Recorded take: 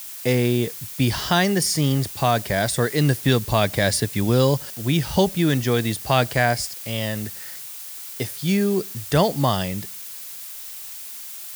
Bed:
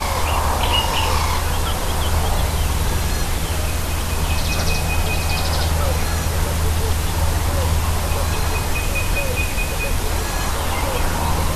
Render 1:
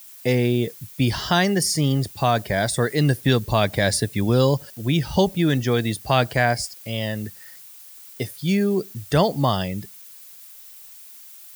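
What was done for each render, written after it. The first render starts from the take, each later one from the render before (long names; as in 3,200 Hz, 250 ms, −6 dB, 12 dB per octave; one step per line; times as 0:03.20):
broadband denoise 10 dB, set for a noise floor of −36 dBFS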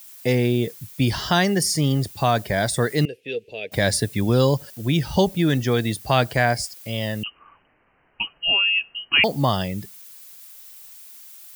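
0:03.05–0:03.72: pair of resonant band-passes 1,100 Hz, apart 2.5 octaves
0:07.23–0:09.24: voice inversion scrambler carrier 3,000 Hz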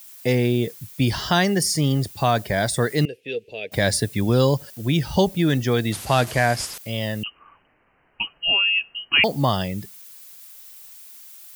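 0:05.92–0:06.78: linear delta modulator 64 kbit/s, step −27 dBFS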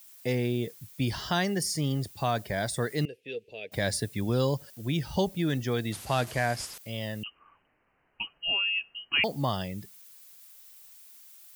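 level −8.5 dB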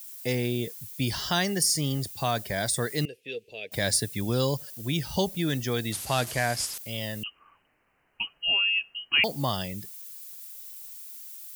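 high-shelf EQ 3,500 Hz +9.5 dB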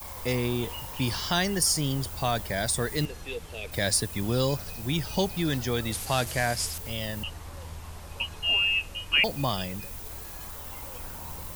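mix in bed −22 dB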